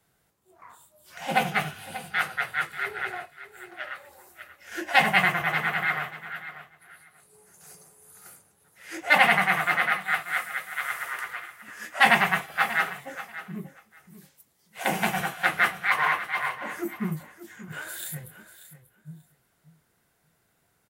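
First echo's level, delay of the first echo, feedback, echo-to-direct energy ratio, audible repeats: −14.0 dB, 587 ms, 16%, −14.0 dB, 2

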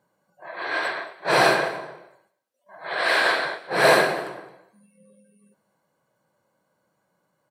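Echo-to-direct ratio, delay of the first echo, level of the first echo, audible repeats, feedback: −20.0 dB, 220 ms, −20.0 dB, 1, repeats not evenly spaced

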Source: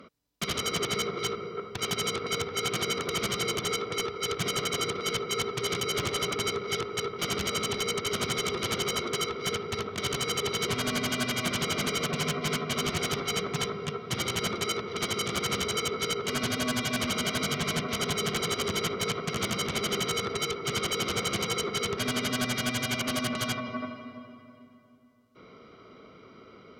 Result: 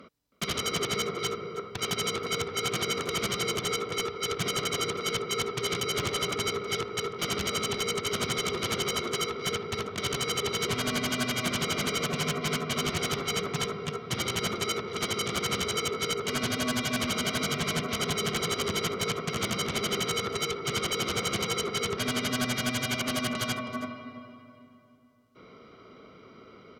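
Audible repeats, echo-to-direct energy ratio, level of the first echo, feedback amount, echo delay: 1, −17.5 dB, −17.5 dB, repeats not evenly spaced, 320 ms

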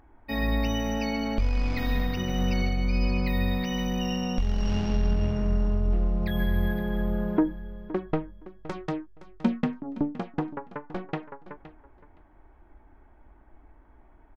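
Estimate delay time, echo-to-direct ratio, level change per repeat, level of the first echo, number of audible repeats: 517 ms, −16.0 dB, −15.5 dB, −16.0 dB, 2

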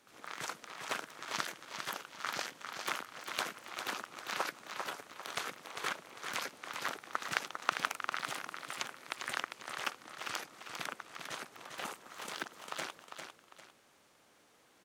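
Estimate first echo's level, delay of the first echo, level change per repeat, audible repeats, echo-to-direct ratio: −7.0 dB, 400 ms, −9.5 dB, 2, −6.5 dB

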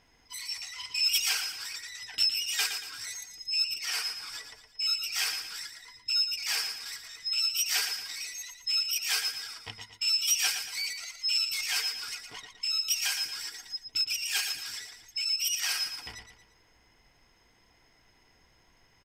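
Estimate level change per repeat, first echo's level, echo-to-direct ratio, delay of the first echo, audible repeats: −7.5 dB, −8.0 dB, −7.0 dB, 115 ms, 3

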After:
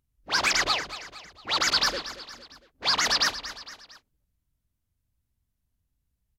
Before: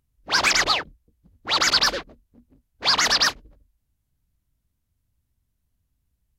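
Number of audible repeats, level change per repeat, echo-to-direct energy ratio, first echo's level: 3, −6.0 dB, −13.0 dB, −14.0 dB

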